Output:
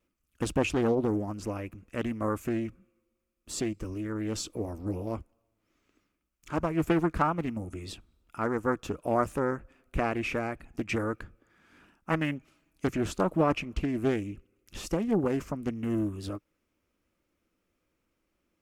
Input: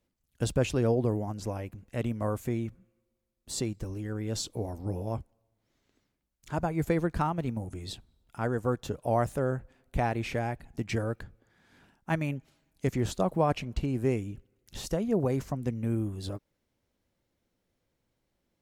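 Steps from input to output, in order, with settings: wow and flutter 28 cents; graphic EQ with 31 bands 125 Hz -10 dB, 315 Hz +6 dB, 800 Hz -4 dB, 1.25 kHz +9 dB, 2.5 kHz +7 dB, 4 kHz -5 dB; loudspeaker Doppler distortion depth 0.45 ms

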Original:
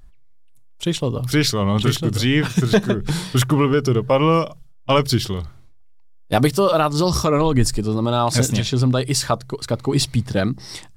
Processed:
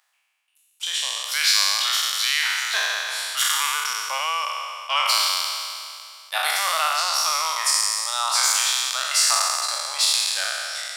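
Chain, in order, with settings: spectral sustain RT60 2.44 s; Bessel high-pass 1.4 kHz, order 8; 5.22–6.33 s: crackle 65 per s -53 dBFS; trim -1 dB

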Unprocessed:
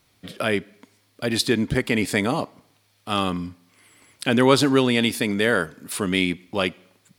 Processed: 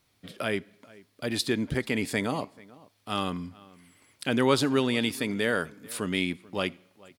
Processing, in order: echo from a far wall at 75 m, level -22 dB; trim -6.5 dB

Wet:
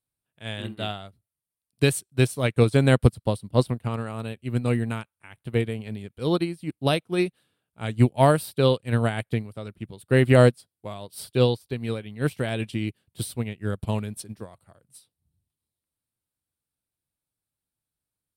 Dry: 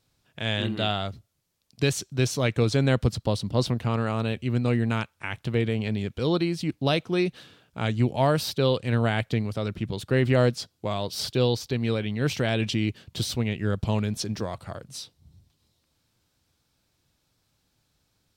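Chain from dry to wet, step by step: resonant high shelf 7.7 kHz +7.5 dB, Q 3; upward expansion 2.5:1, over -36 dBFS; trim +7.5 dB

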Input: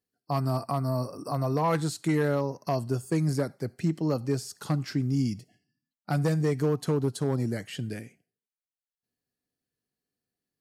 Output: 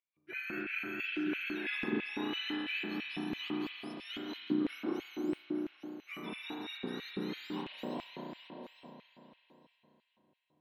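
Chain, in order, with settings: spectrum inverted on a logarithmic axis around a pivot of 1.3 kHz; reverse; compression 4:1, threshold -41 dBFS, peak gain reduction 15 dB; reverse; distance through air 430 m; on a send: thinning echo 858 ms, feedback 21%, high-pass 160 Hz, level -11 dB; on the sum: spring tank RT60 3.3 s, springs 33 ms, chirp 60 ms, DRR -4.5 dB; LFO high-pass square 3 Hz 280–2400 Hz; trim +3.5 dB

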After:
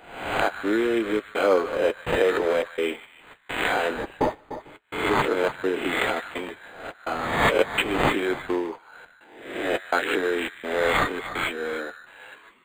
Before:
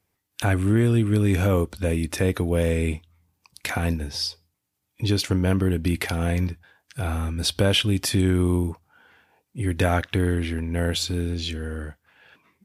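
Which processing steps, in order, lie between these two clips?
reverse spectral sustain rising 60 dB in 0.70 s; high-pass 370 Hz 24 dB/octave; in parallel at +1 dB: compression, threshold -37 dBFS, peak gain reduction 20 dB; on the sum: trance gate "xxxxxx..x" 189 bpm -60 dB; flange 0.95 Hz, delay 8.2 ms, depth 2.6 ms, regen -38%; on a send: repeats whose band climbs or falls 149 ms, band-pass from 1.5 kHz, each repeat 1.4 oct, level -8.5 dB; on the sum: decimation joined by straight lines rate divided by 8×; trim +6.5 dB

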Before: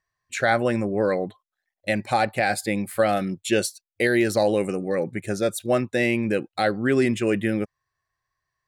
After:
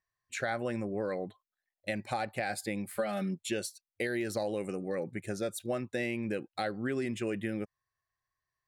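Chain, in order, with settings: 2.97–3.44 s: comb 5 ms, depth 89%; compression 4:1, threshold -22 dBFS, peak gain reduction 9 dB; trim -8 dB

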